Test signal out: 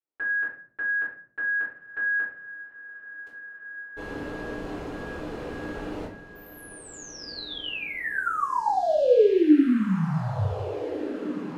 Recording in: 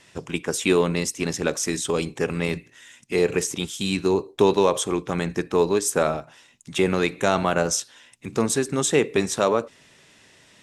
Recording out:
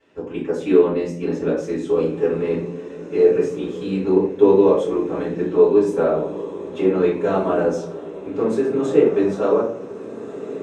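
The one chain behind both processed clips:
resonant band-pass 410 Hz, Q 0.8
feedback delay with all-pass diffusion 1,702 ms, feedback 51%, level −12.5 dB
rectangular room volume 46 cubic metres, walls mixed, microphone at 3.2 metres
level −9.5 dB

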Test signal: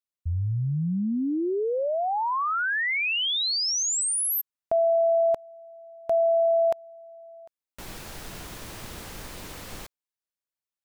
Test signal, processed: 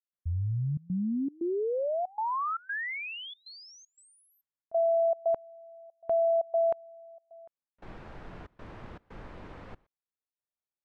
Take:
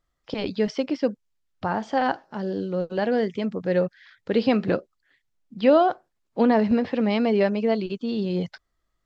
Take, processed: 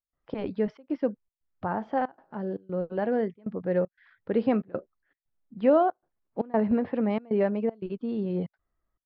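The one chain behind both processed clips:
low-pass filter 1,600 Hz 12 dB per octave
gate pattern ".xxxxx.xxx" 117 BPM −24 dB
level −3.5 dB

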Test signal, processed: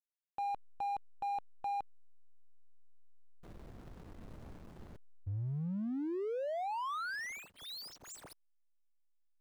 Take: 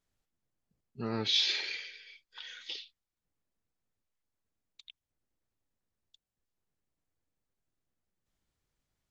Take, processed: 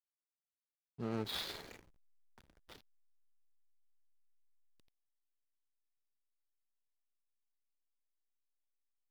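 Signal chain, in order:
running median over 15 samples
slack as between gear wheels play −42.5 dBFS
level −3.5 dB

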